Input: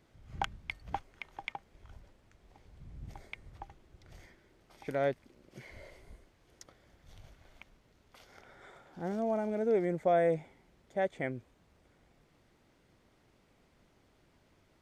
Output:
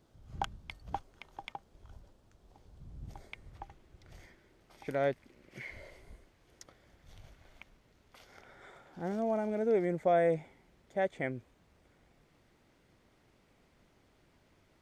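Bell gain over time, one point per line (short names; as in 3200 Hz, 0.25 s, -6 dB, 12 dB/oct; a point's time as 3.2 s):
bell 2100 Hz 0.83 oct
2.93 s -8.5 dB
3.59 s +0.5 dB
5.06 s +0.5 dB
5.62 s +12 dB
5.82 s +1 dB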